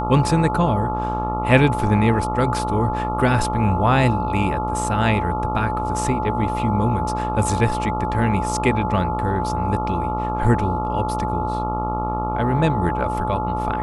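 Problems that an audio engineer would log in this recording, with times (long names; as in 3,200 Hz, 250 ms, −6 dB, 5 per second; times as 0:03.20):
mains buzz 60 Hz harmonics 23 −26 dBFS
whistle 860 Hz −24 dBFS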